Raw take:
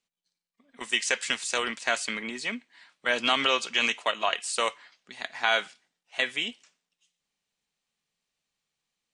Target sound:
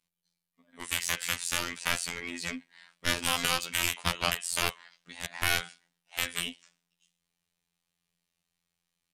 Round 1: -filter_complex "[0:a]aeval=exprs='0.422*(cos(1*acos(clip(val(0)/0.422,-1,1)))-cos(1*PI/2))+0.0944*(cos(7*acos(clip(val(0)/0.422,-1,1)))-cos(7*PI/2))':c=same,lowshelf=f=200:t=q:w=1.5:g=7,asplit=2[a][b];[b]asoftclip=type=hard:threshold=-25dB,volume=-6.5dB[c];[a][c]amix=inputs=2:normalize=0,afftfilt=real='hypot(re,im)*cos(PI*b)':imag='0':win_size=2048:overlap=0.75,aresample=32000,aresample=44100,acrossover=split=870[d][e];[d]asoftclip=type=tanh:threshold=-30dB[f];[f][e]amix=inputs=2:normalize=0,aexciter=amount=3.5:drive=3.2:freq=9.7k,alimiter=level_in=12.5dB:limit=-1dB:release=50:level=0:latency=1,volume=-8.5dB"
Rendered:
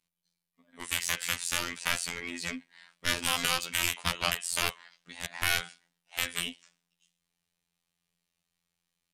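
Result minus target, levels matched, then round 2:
soft clip: distortion +12 dB
-filter_complex "[0:a]aeval=exprs='0.422*(cos(1*acos(clip(val(0)/0.422,-1,1)))-cos(1*PI/2))+0.0944*(cos(7*acos(clip(val(0)/0.422,-1,1)))-cos(7*PI/2))':c=same,lowshelf=f=200:t=q:w=1.5:g=7,asplit=2[a][b];[b]asoftclip=type=hard:threshold=-25dB,volume=-6.5dB[c];[a][c]amix=inputs=2:normalize=0,afftfilt=real='hypot(re,im)*cos(PI*b)':imag='0':win_size=2048:overlap=0.75,aresample=32000,aresample=44100,acrossover=split=870[d][e];[d]asoftclip=type=tanh:threshold=-21dB[f];[f][e]amix=inputs=2:normalize=0,aexciter=amount=3.5:drive=3.2:freq=9.7k,alimiter=level_in=12.5dB:limit=-1dB:release=50:level=0:latency=1,volume=-8.5dB"

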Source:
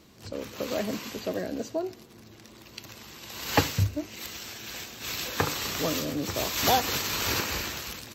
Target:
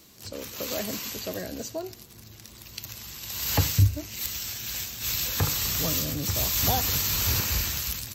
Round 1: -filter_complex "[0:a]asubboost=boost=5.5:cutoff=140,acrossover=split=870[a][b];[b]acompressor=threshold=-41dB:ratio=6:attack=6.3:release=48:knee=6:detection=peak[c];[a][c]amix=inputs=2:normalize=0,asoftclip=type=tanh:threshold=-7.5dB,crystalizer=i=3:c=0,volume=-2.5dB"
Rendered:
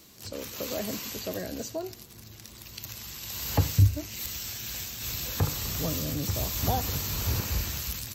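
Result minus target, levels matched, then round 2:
compressor: peak gain reduction +8 dB
-filter_complex "[0:a]asubboost=boost=5.5:cutoff=140,acrossover=split=870[a][b];[b]acompressor=threshold=-31.5dB:ratio=6:attack=6.3:release=48:knee=6:detection=peak[c];[a][c]amix=inputs=2:normalize=0,asoftclip=type=tanh:threshold=-7.5dB,crystalizer=i=3:c=0,volume=-2.5dB"

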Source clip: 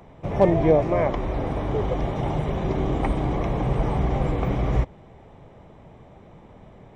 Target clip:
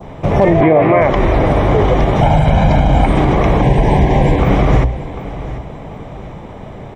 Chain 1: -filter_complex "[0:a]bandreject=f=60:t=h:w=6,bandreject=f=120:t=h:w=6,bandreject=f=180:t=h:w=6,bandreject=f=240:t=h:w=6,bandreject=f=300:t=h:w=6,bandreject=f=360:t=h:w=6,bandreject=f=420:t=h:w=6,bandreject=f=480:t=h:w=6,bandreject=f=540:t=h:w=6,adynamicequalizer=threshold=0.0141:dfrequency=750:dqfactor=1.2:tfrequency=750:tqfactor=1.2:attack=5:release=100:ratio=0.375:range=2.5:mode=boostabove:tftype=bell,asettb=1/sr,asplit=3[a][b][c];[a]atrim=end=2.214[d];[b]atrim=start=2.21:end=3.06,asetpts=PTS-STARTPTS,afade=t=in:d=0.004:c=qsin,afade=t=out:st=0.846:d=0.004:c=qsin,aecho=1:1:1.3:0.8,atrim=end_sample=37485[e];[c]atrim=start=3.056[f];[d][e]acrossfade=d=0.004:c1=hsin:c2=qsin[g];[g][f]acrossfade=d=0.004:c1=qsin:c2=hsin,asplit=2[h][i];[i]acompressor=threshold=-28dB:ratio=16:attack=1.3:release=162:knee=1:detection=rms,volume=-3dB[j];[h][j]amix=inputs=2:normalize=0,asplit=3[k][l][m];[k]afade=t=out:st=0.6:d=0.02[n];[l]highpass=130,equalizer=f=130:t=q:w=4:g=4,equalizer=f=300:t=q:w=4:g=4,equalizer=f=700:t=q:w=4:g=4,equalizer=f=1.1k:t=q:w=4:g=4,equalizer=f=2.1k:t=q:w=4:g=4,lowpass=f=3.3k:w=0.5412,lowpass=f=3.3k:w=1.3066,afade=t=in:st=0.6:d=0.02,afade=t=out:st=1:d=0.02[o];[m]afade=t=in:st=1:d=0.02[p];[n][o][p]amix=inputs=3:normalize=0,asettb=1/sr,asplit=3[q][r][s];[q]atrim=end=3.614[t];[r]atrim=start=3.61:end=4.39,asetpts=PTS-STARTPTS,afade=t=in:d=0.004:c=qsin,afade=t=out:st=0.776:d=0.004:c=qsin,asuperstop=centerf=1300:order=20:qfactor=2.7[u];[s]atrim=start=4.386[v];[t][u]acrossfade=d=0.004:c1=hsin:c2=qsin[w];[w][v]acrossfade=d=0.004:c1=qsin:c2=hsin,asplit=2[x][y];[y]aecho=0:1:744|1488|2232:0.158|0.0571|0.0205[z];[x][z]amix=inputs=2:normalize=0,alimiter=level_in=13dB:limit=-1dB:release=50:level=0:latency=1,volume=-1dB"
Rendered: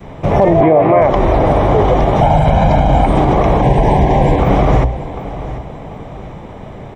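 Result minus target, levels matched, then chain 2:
2000 Hz band -3.5 dB
-filter_complex "[0:a]bandreject=f=60:t=h:w=6,bandreject=f=120:t=h:w=6,bandreject=f=180:t=h:w=6,bandreject=f=240:t=h:w=6,bandreject=f=300:t=h:w=6,bandreject=f=360:t=h:w=6,bandreject=f=420:t=h:w=6,bandreject=f=480:t=h:w=6,bandreject=f=540:t=h:w=6,adynamicequalizer=threshold=0.0141:dfrequency=2000:dqfactor=1.2:tfrequency=2000:tqfactor=1.2:attack=5:release=100:ratio=0.375:range=2.5:mode=boostabove:tftype=bell,asettb=1/sr,asplit=3[a][b][c];[a]atrim=end=2.214[d];[b]atrim=start=2.21:end=3.06,asetpts=PTS-STARTPTS,afade=t=in:d=0.004:c=qsin,afade=t=out:st=0.846:d=0.004:c=qsin,aecho=1:1:1.3:0.8,atrim=end_sample=37485[e];[c]atrim=start=3.056[f];[d][e]acrossfade=d=0.004:c1=hsin:c2=qsin[g];[g][f]acrossfade=d=0.004:c1=qsin:c2=hsin,asplit=2[h][i];[i]acompressor=threshold=-28dB:ratio=16:attack=1.3:release=162:knee=1:detection=rms,volume=-3dB[j];[h][j]amix=inputs=2:normalize=0,asplit=3[k][l][m];[k]afade=t=out:st=0.6:d=0.02[n];[l]highpass=130,equalizer=f=130:t=q:w=4:g=4,equalizer=f=300:t=q:w=4:g=4,equalizer=f=700:t=q:w=4:g=4,equalizer=f=1.1k:t=q:w=4:g=4,equalizer=f=2.1k:t=q:w=4:g=4,lowpass=f=3.3k:w=0.5412,lowpass=f=3.3k:w=1.3066,afade=t=in:st=0.6:d=0.02,afade=t=out:st=1:d=0.02[o];[m]afade=t=in:st=1:d=0.02[p];[n][o][p]amix=inputs=3:normalize=0,asettb=1/sr,asplit=3[q][r][s];[q]atrim=end=3.614[t];[r]atrim=start=3.61:end=4.39,asetpts=PTS-STARTPTS,afade=t=in:d=0.004:c=qsin,afade=t=out:st=0.776:d=0.004:c=qsin,asuperstop=centerf=1300:order=20:qfactor=2.7[u];[s]atrim=start=4.386[v];[t][u]acrossfade=d=0.004:c1=hsin:c2=qsin[w];[w][v]acrossfade=d=0.004:c1=qsin:c2=hsin,asplit=2[x][y];[y]aecho=0:1:744|1488|2232:0.158|0.0571|0.0205[z];[x][z]amix=inputs=2:normalize=0,alimiter=level_in=13dB:limit=-1dB:release=50:level=0:latency=1,volume=-1dB"

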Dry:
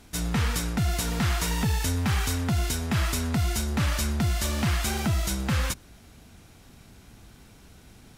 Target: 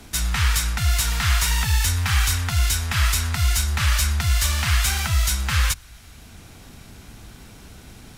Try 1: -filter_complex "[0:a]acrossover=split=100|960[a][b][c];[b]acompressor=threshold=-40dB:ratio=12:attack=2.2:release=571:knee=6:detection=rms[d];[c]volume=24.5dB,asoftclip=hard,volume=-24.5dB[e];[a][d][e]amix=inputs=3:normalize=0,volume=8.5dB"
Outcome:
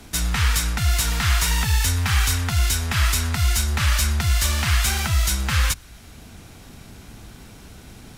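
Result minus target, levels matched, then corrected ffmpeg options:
compressor: peak gain reduction -7.5 dB
-filter_complex "[0:a]acrossover=split=100|960[a][b][c];[b]acompressor=threshold=-48dB:ratio=12:attack=2.2:release=571:knee=6:detection=rms[d];[c]volume=24.5dB,asoftclip=hard,volume=-24.5dB[e];[a][d][e]amix=inputs=3:normalize=0,volume=8.5dB"

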